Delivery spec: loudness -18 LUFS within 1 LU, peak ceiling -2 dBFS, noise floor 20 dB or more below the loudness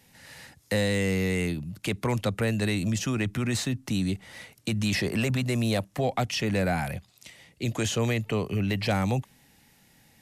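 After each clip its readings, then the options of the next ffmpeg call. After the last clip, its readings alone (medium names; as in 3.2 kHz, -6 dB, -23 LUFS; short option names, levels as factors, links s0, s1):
loudness -28.0 LUFS; peak level -17.0 dBFS; loudness target -18.0 LUFS
-> -af "volume=3.16"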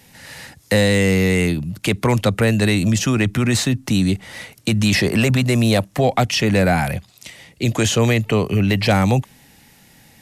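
loudness -18.0 LUFS; peak level -7.0 dBFS; noise floor -51 dBFS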